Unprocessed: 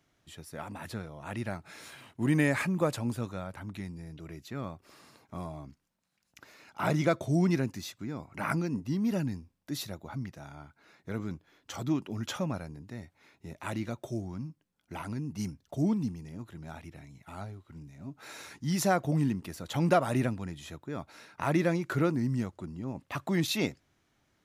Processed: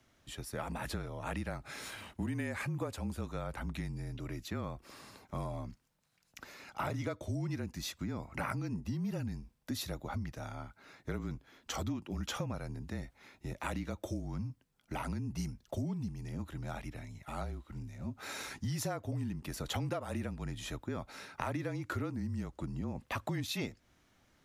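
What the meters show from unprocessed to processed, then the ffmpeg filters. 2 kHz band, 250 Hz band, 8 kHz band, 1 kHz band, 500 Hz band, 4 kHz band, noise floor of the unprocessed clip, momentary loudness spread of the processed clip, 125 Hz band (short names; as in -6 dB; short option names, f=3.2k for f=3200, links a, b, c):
-6.0 dB, -8.0 dB, -3.5 dB, -6.0 dB, -8.5 dB, -3.0 dB, -75 dBFS, 9 LU, -5.0 dB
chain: -af "afreqshift=-33,acompressor=threshold=-37dB:ratio=10,volume=3.5dB"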